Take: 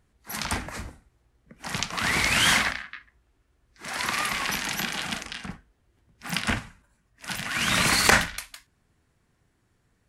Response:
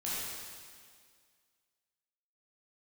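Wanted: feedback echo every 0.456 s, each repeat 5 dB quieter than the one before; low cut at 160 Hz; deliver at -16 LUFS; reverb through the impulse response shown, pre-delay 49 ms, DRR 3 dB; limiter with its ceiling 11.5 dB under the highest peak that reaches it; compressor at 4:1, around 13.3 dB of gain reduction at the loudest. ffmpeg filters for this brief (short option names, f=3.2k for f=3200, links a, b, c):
-filter_complex "[0:a]highpass=160,acompressor=threshold=-30dB:ratio=4,alimiter=limit=-21.5dB:level=0:latency=1,aecho=1:1:456|912|1368|1824|2280|2736|3192:0.562|0.315|0.176|0.0988|0.0553|0.031|0.0173,asplit=2[a][b];[1:a]atrim=start_sample=2205,adelay=49[c];[b][c]afir=irnorm=-1:irlink=0,volume=-7.5dB[d];[a][d]amix=inputs=2:normalize=0,volume=16.5dB"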